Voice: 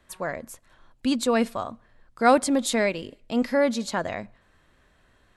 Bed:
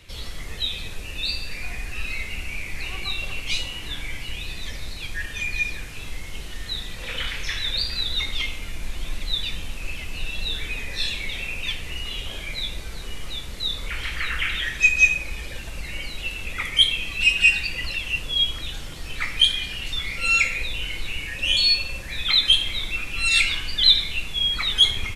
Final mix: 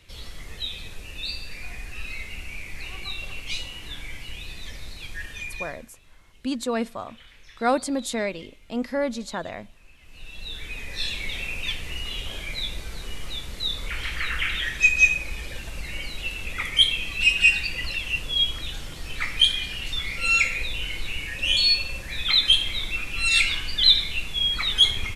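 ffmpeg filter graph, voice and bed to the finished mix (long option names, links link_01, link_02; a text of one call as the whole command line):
ffmpeg -i stem1.wav -i stem2.wav -filter_complex "[0:a]adelay=5400,volume=-4dB[link_01];[1:a]volume=16dB,afade=type=out:start_time=5.3:duration=0.62:silence=0.141254,afade=type=in:start_time=9.99:duration=1.3:silence=0.0891251[link_02];[link_01][link_02]amix=inputs=2:normalize=0" out.wav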